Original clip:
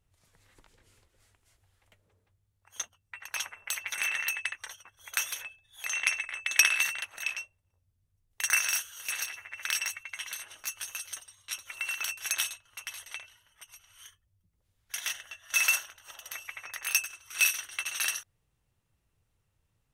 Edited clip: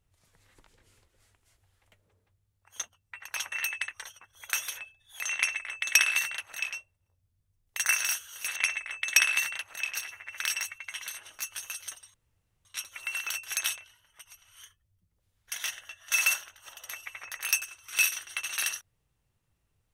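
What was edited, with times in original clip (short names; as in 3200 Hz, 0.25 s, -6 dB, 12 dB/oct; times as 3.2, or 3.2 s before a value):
3.52–4.16 cut
5.99–7.38 copy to 9.2
11.39 insert room tone 0.51 s
12.5–13.18 cut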